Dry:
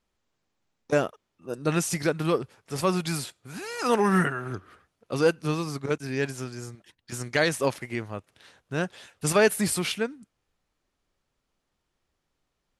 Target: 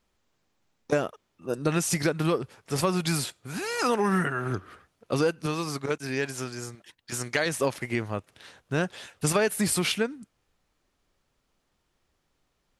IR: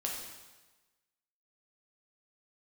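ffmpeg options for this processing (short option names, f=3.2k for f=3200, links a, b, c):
-filter_complex "[0:a]acompressor=threshold=-26dB:ratio=5,asettb=1/sr,asplit=3[a][b][c];[a]atrim=end=5.464[d];[b]atrim=start=5.46:end=7.46,asetpts=PTS-STARTPTS,afade=t=in:d=0.004:c=qsin,afade=t=out:st=1.996:d=0.004:c=qsin,lowshelf=f=320:g=-7[e];[c]atrim=start=7.456[f];[d][e]acrossfade=d=0.004:c1=hsin:c2=qsin[g];[g][f]acrossfade=d=0.004:c1=qsin:c2=hsin,volume=4.5dB"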